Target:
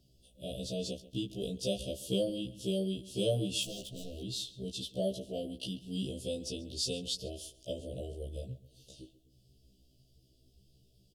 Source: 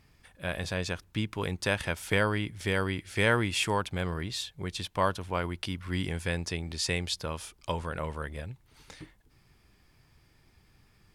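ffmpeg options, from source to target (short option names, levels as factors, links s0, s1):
-filter_complex "[0:a]asettb=1/sr,asplit=3[s0][s1][s2];[s0]atrim=end=3.634[s3];[s1]atrim=start=3.63:end=4.22,asetpts=PTS-STARTPTS,afade=t=in:d=0.004:c=qsin,afade=t=out:st=0.586:d=0.004:c=qsin,aeval=exprs='0.0251*(abs(mod(val(0)/0.0251+3,4)-2)-1)':c=same[s4];[s2]atrim=start=4.216[s5];[s3][s4]acrossfade=d=0.004:c1=hsin:c2=qsin[s6];[s6][s5]acrossfade=d=0.004:c1=qsin:c2=hsin,asuperstop=centerf=1400:order=20:qfactor=0.65,aeval=exprs='0.15*(cos(1*acos(clip(val(0)/0.15,-1,1)))-cos(1*PI/2))+0.00299*(cos(3*acos(clip(val(0)/0.15,-1,1)))-cos(3*PI/2))':c=same,asplit=2[s7][s8];[s8]adelay=135,lowpass=f=4300:p=1,volume=0.141,asplit=2[s9][s10];[s10]adelay=135,lowpass=f=4300:p=1,volume=0.32,asplit=2[s11][s12];[s12]adelay=135,lowpass=f=4300:p=1,volume=0.32[s13];[s7][s9][s11][s13]amix=inputs=4:normalize=0,afftfilt=real='re*1.73*eq(mod(b,3),0)':imag='im*1.73*eq(mod(b,3),0)':win_size=2048:overlap=0.75"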